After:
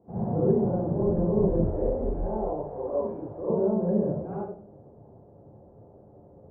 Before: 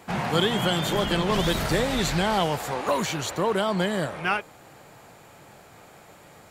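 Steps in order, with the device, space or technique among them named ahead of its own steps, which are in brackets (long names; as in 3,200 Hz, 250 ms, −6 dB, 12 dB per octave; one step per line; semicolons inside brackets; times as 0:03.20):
next room (low-pass filter 620 Hz 24 dB per octave; convolution reverb RT60 0.50 s, pre-delay 38 ms, DRR −8.5 dB)
0:01.70–0:03.50: parametric band 160 Hz −14 dB 1.3 octaves
level −8.5 dB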